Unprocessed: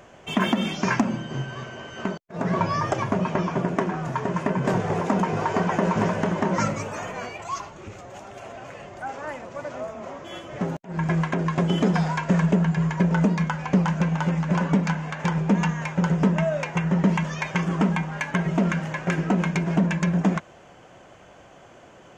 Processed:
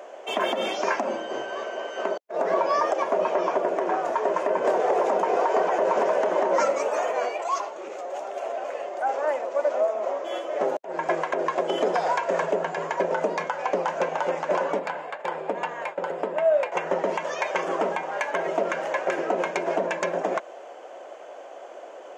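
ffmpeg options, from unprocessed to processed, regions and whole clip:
-filter_complex "[0:a]asettb=1/sr,asplit=3[a][b][c];[a]atrim=end=14.794[d];[b]atrim=start=14.79:end=16.72,asetpts=PTS-STARTPTS,afade=t=in:d=0.004:c=qsin,afade=t=out:st=1.926:d=0.004:c=qsin,agate=range=-33dB:threshold=-27dB:ratio=3:release=100:detection=peak,equalizer=f=6k:w=3.7:g=-13.5,acompressor=threshold=-27dB:ratio=2.5:attack=3.2:release=140:knee=1:detection=peak[e];[c]atrim=start=16.716[f];[d][e]acrossfade=d=0.004:c1=hsin:c2=qsin[g];[g][f]acrossfade=d=0.004:c1=qsin:c2=hsin,highpass=f=340:w=0.5412,highpass=f=340:w=1.3066,equalizer=f=590:w=1.1:g=11.5,alimiter=limit=-13dB:level=0:latency=1:release=112"

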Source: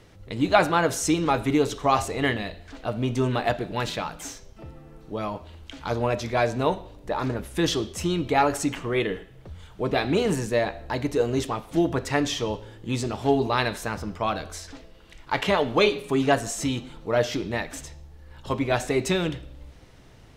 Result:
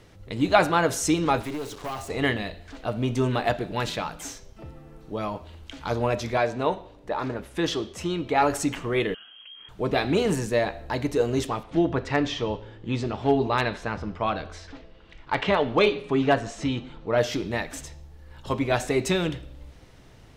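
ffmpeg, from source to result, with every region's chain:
-filter_complex "[0:a]asettb=1/sr,asplit=3[a][b][c];[a]atrim=end=1.404[d];[b]atrim=start=1.4:end=2.1,asetpts=PTS-STARTPTS,afade=t=in:d=0.004:c=qsin,afade=t=out:st=0.696:d=0.004:c=qsin,acrusher=bits=5:mix=0:aa=0.5,acrossover=split=260|1600[e][f][g];[e]acompressor=threshold=-38dB:ratio=4[h];[f]acompressor=threshold=-27dB:ratio=4[i];[g]acompressor=threshold=-38dB:ratio=4[j];[h][i][j]amix=inputs=3:normalize=0,aeval=exprs='(tanh(22.4*val(0)+0.4)-tanh(0.4))/22.4':c=same[k];[c]atrim=start=2.096[l];[d][k]acrossfade=d=0.004:c1=hsin:c2=qsin[m];[m][l]acrossfade=d=0.004:c1=qsin:c2=hsin,asettb=1/sr,asplit=3[n][o][p];[n]atrim=end=6.374[q];[o]atrim=start=6.37:end=8.42,asetpts=PTS-STARTPTS,afade=t=in:d=0.004:c=qsin,afade=t=out:st=2.046:d=0.004:c=qsin,lowpass=f=3.7k:p=1,lowshelf=f=190:g=-8[r];[p]atrim=start=8.416[s];[q][r]acrossfade=d=0.004:c1=hsin:c2=qsin[t];[t][s]acrossfade=d=0.004:c1=qsin:c2=hsin,asettb=1/sr,asplit=3[u][v][w];[u]atrim=end=9.144[x];[v]atrim=start=9.14:end=9.69,asetpts=PTS-STARTPTS,afade=t=in:d=0.004:c=qsin,afade=t=out:st=0.546:d=0.004:c=qsin,equalizer=f=1.9k:w=5.4:g=2.5,acompressor=threshold=-42dB:ratio=5:attack=3.2:release=140:knee=1:detection=peak,lowpass=f=2.8k:t=q:w=0.5098,lowpass=f=2.8k:t=q:w=0.6013,lowpass=f=2.8k:t=q:w=0.9,lowpass=f=2.8k:t=q:w=2.563,afreqshift=-3300[y];[w]atrim=start=9.686[z];[x][y]acrossfade=d=0.004:c1=hsin:c2=qsin[aa];[aa][z]acrossfade=d=0.004:c1=qsin:c2=hsin,asettb=1/sr,asplit=3[ab][ac][ad];[ab]atrim=end=11.634[ae];[ac]atrim=start=11.63:end=17.18,asetpts=PTS-STARTPTS,afade=t=in:d=0.004:c=qsin,afade=t=out:st=5.546:d=0.004:c=qsin,lowpass=3.8k,asoftclip=type=hard:threshold=-10.5dB[af];[ad]atrim=start=17.176[ag];[ae][af]acrossfade=d=0.004:c1=hsin:c2=qsin[ah];[ah][ag]acrossfade=d=0.004:c1=qsin:c2=hsin"

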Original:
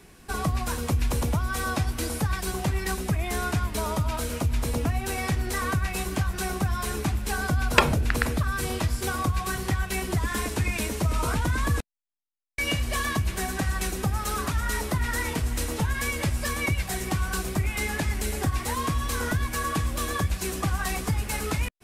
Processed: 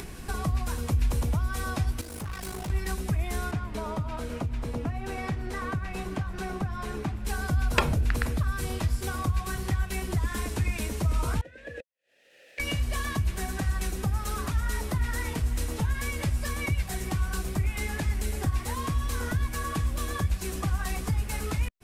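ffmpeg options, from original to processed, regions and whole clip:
-filter_complex "[0:a]asettb=1/sr,asplit=3[a][b][c];[a]atrim=end=2.014[d];[b]atrim=start=2.01:end=2.7,asetpts=PTS-STARTPTS,afade=t=in:d=0.004:c=qsin,afade=t=out:st=0.686:d=0.004:c=qsin,highpass=f=98:p=1,tremolo=f=52:d=0.857,asoftclip=type=hard:threshold=-35.5dB[e];[c]atrim=start=2.696[f];[d][e]acrossfade=d=0.004:c1=hsin:c2=qsin[g];[g][f]acrossfade=d=0.004:c1=qsin:c2=hsin,asettb=1/sr,asplit=3[h][i][j];[h]atrim=end=3.514[k];[i]atrim=start=3.51:end=7.25,asetpts=PTS-STARTPTS,afade=t=in:d=0.004:c=qsin,afade=t=out:st=3.736:d=0.004:c=qsin,lowpass=f=2.1k:p=1,equalizer=f=63:w=1.3:g=-10.5[l];[j]atrim=start=7.246[m];[k][l]acrossfade=d=0.004:c1=hsin:c2=qsin[n];[n][m]acrossfade=d=0.004:c1=qsin:c2=hsin,asettb=1/sr,asplit=3[o][p][q];[o]atrim=end=11.414[r];[p]atrim=start=11.41:end=12.6,asetpts=PTS-STARTPTS,afade=t=in:d=0.004:c=qsin,afade=t=out:st=1.186:d=0.004:c=qsin,asplit=3[s][t][u];[s]bandpass=f=530:t=q:w=8,volume=0dB[v];[t]bandpass=f=1.84k:t=q:w=8,volume=-6dB[w];[u]bandpass=f=2.48k:t=q:w=8,volume=-9dB[x];[v][w][x]amix=inputs=3:normalize=0,acompressor=mode=upward:threshold=-58dB:ratio=2.5:attack=3.2:release=140:knee=2.83:detection=peak[y];[q]atrim=start=12.596[z];[r][y]acrossfade=d=0.004:c1=hsin:c2=qsin[aa];[aa][z]acrossfade=d=0.004:c1=qsin:c2=hsin,lowshelf=f=130:g=8,acompressor=mode=upward:threshold=-21dB:ratio=2.5,volume=-6dB"

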